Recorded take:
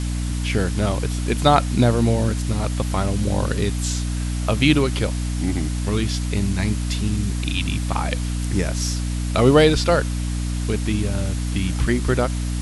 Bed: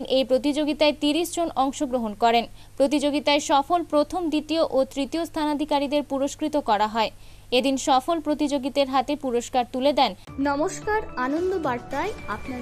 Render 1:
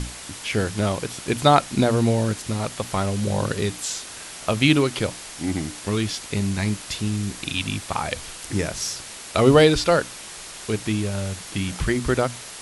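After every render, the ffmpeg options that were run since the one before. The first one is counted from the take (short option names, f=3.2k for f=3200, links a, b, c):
-af "bandreject=f=60:t=h:w=6,bandreject=f=120:t=h:w=6,bandreject=f=180:t=h:w=6,bandreject=f=240:t=h:w=6,bandreject=f=300:t=h:w=6"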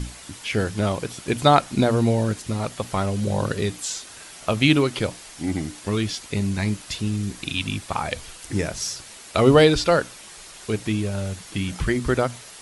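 -af "afftdn=nr=6:nf=-38"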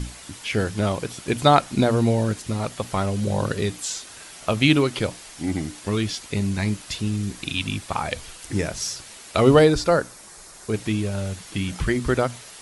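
-filter_complex "[0:a]asettb=1/sr,asplit=3[a][b][c];[a]atrim=end=9.594[d];[b]atrim=start=9.59:end=10.74,asetpts=PTS-STARTPTS,afade=t=in:d=0.004:c=qsin,afade=t=out:st=1.146:d=0.004:c=qsin,equalizer=f=3k:w=1.4:g=-9.5[e];[c]atrim=start=10.736[f];[d][e]acrossfade=d=0.004:c1=hsin:c2=qsin[g];[g][f]acrossfade=d=0.004:c1=qsin:c2=hsin"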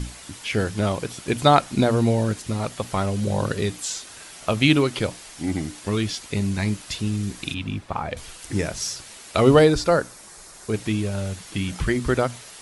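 -filter_complex "[0:a]asettb=1/sr,asplit=3[a][b][c];[a]atrim=end=7.544[d];[b]atrim=start=7.54:end=8.17,asetpts=PTS-STARTPTS,afade=t=in:d=0.004:c=qsin,afade=t=out:st=0.626:d=0.004:c=qsin,lowpass=f=1.3k:p=1[e];[c]atrim=start=8.166[f];[d][e]acrossfade=d=0.004:c1=hsin:c2=qsin[g];[g][f]acrossfade=d=0.004:c1=qsin:c2=hsin"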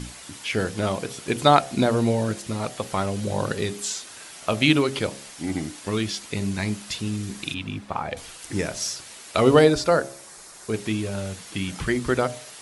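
-af "lowshelf=f=82:g=-11.5,bandreject=f=68.07:t=h:w=4,bandreject=f=136.14:t=h:w=4,bandreject=f=204.21:t=h:w=4,bandreject=f=272.28:t=h:w=4,bandreject=f=340.35:t=h:w=4,bandreject=f=408.42:t=h:w=4,bandreject=f=476.49:t=h:w=4,bandreject=f=544.56:t=h:w=4,bandreject=f=612.63:t=h:w=4,bandreject=f=680.7:t=h:w=4,bandreject=f=748.77:t=h:w=4,bandreject=f=816.84:t=h:w=4"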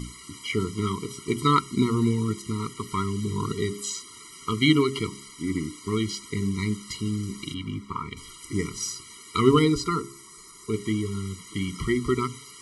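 -af "afftfilt=real='re*eq(mod(floor(b*sr/1024/470),2),0)':imag='im*eq(mod(floor(b*sr/1024/470),2),0)':win_size=1024:overlap=0.75"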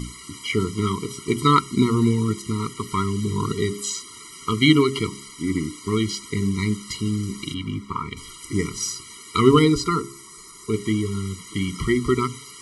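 -af "volume=4dB,alimiter=limit=-2dB:level=0:latency=1"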